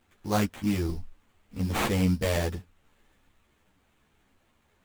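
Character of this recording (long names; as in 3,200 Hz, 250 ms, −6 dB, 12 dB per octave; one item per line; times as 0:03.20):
aliases and images of a low sample rate 5,200 Hz, jitter 20%
a shimmering, thickened sound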